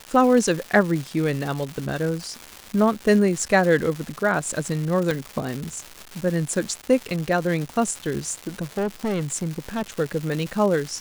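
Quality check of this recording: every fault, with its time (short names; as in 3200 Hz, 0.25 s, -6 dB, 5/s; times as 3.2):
crackle 370/s -27 dBFS
5.11 pop
8.21–9.91 clipped -21 dBFS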